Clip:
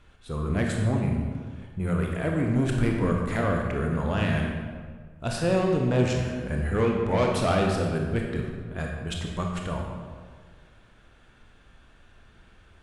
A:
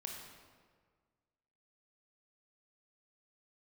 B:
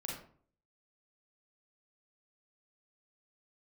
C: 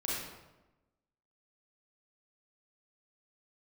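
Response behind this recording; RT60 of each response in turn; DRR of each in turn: A; 1.7 s, 0.50 s, 1.1 s; 0.5 dB, -3.0 dB, -6.5 dB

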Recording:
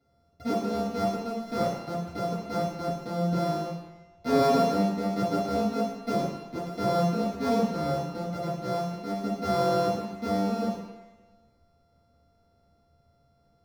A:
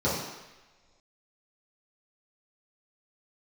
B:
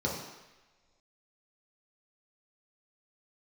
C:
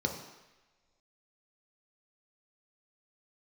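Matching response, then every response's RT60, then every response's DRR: A; no single decay rate, no single decay rate, no single decay rate; -10.5 dB, -4.0 dB, 2.0 dB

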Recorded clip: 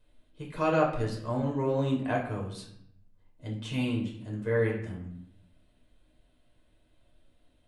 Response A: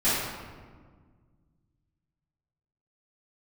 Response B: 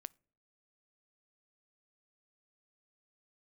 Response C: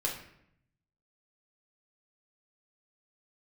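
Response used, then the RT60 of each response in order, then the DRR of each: C; 1.6 s, no single decay rate, 0.75 s; -16.0 dB, 23.0 dB, -2.0 dB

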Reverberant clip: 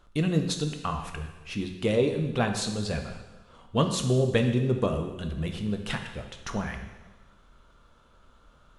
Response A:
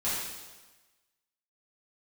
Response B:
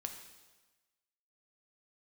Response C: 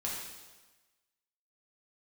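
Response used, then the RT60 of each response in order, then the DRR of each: B; 1.2 s, 1.2 s, 1.2 s; -11.5 dB, 4.5 dB, -5.0 dB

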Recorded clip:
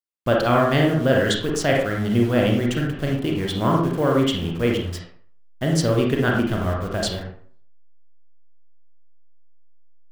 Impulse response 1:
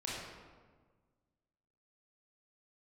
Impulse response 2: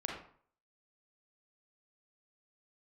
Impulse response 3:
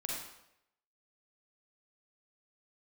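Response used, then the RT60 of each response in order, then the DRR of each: 2; 1.5 s, 0.50 s, 0.80 s; -6.5 dB, -1.0 dB, -3.0 dB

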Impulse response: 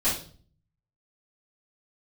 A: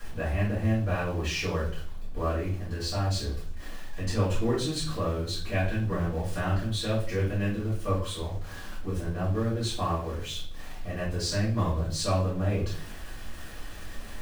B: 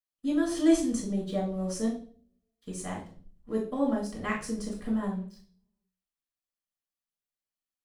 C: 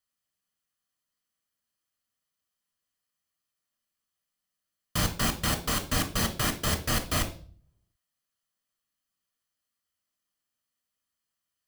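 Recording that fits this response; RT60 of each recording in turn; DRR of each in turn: A; 0.45 s, 0.45 s, 0.45 s; -12.0 dB, -3.0 dB, 6.0 dB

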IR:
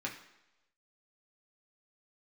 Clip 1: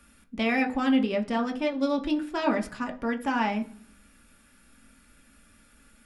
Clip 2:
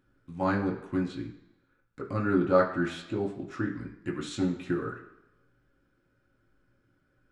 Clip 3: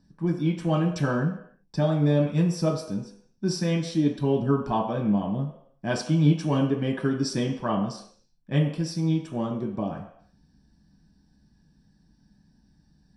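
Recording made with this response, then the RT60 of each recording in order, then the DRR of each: 2; 0.50 s, no single decay rate, no single decay rate; 3.0 dB, -2.5 dB, -1.5 dB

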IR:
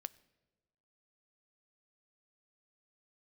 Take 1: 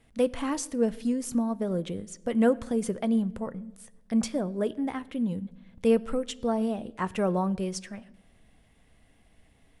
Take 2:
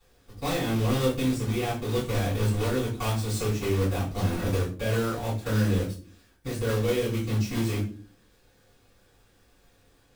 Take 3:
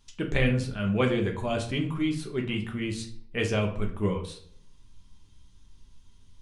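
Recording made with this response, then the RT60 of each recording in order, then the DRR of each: 1; 1.2 s, no single decay rate, 0.55 s; 15.5 dB, -11.5 dB, 1.5 dB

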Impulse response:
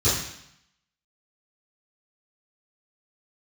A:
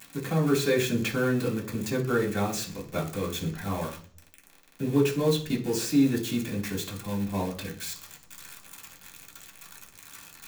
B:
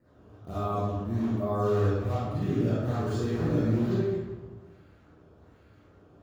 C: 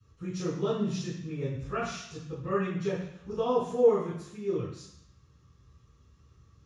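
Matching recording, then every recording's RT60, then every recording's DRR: C; 0.45 s, 1.3 s, 0.75 s; -6.0 dB, -11.0 dB, -16.5 dB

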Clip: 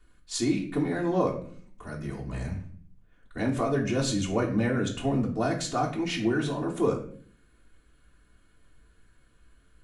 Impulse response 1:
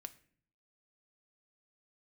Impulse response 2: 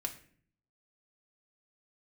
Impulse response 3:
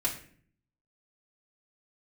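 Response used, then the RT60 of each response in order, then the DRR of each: 3; 0.50 s, 0.50 s, 0.50 s; 8.5 dB, 1.5 dB, -6.0 dB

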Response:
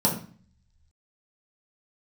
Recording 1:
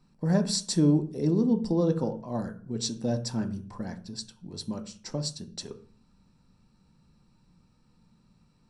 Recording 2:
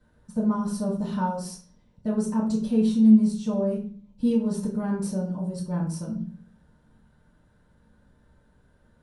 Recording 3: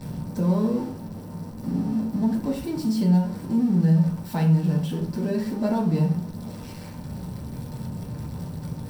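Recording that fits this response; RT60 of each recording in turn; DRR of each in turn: 3; 0.45 s, 0.45 s, 0.45 s; 6.0 dB, -10.0 dB, -4.0 dB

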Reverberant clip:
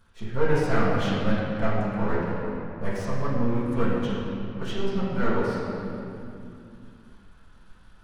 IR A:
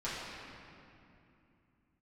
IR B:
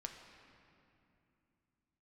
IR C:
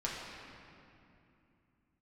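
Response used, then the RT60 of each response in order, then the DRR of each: A; 2.7 s, 2.7 s, 2.7 s; -11.5 dB, 3.0 dB, -5.5 dB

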